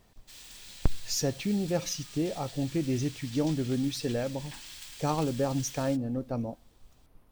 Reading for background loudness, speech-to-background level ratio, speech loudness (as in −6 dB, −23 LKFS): −44.5 LKFS, 13.0 dB, −31.5 LKFS